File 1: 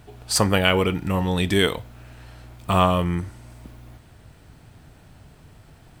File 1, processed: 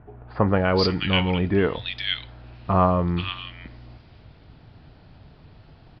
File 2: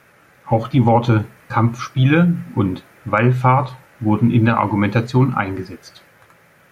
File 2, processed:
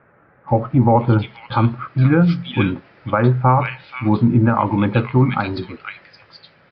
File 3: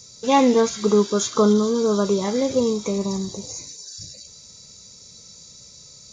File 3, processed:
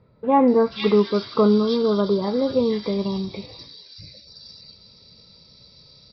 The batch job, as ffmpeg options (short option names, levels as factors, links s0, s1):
-filter_complex "[0:a]acrossover=split=1800[s0][s1];[s1]adelay=480[s2];[s0][s2]amix=inputs=2:normalize=0,aresample=11025,aresample=44100"